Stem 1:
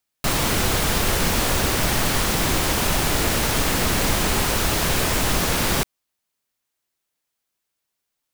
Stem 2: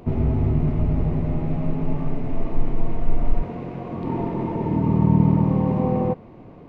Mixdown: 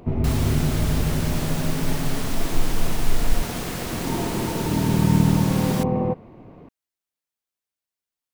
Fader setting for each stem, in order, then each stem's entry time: −10.5, −1.0 decibels; 0.00, 0.00 seconds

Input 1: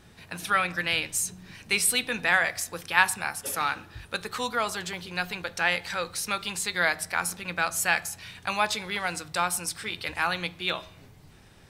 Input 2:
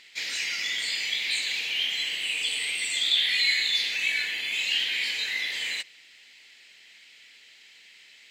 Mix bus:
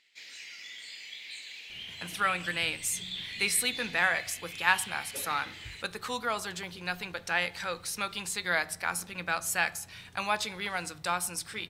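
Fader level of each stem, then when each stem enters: −4.0, −15.5 decibels; 1.70, 0.00 seconds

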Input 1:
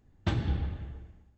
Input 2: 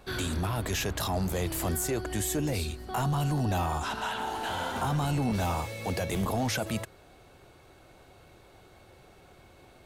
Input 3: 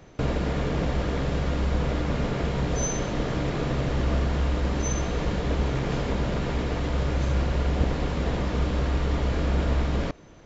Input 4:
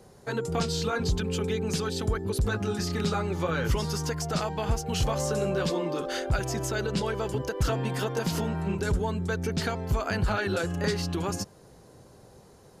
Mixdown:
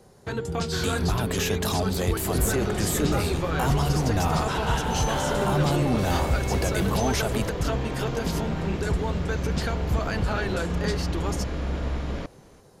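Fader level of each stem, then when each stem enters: −9.5, +3.0, −4.5, −0.5 decibels; 0.00, 0.65, 2.15, 0.00 seconds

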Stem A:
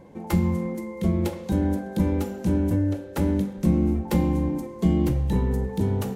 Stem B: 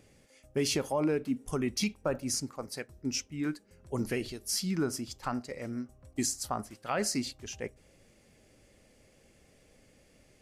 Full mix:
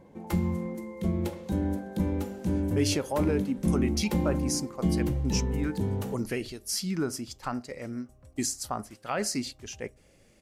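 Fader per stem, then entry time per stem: −5.5, +1.0 decibels; 0.00, 2.20 seconds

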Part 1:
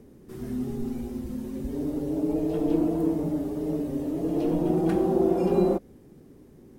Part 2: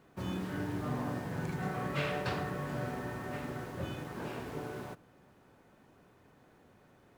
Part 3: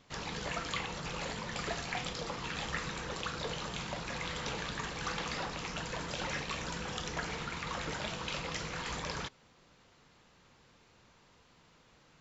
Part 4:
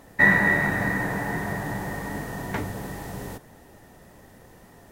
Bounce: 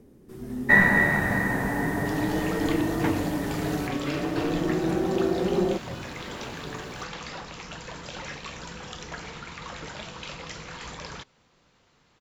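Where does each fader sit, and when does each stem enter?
−2.5, +0.5, −0.5, 0.0 decibels; 0.00, 2.10, 1.95, 0.50 seconds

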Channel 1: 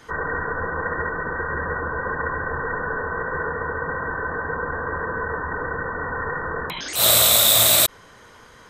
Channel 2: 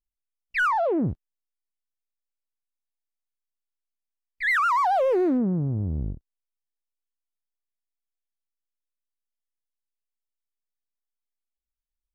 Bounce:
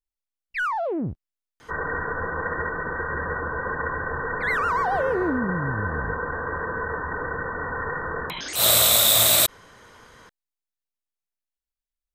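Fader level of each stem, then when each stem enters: −2.0, −3.0 decibels; 1.60, 0.00 seconds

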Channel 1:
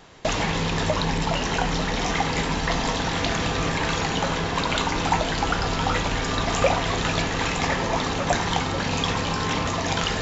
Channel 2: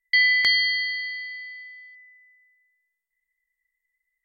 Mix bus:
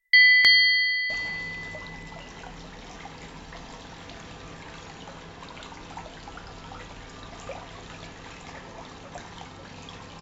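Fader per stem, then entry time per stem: −18.0, +3.0 decibels; 0.85, 0.00 seconds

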